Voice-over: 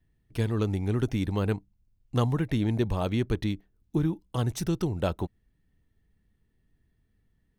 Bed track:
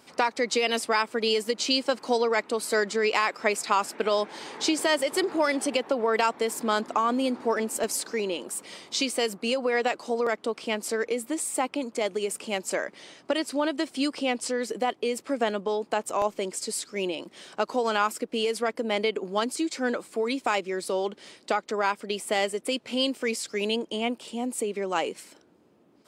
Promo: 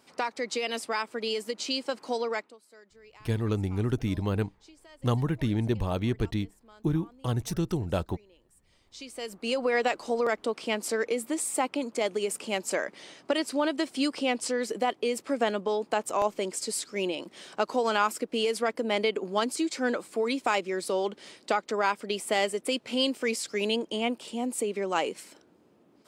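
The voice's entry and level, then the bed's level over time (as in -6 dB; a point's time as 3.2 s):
2.90 s, -1.0 dB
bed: 2.36 s -6 dB
2.6 s -30 dB
8.56 s -30 dB
9.58 s -0.5 dB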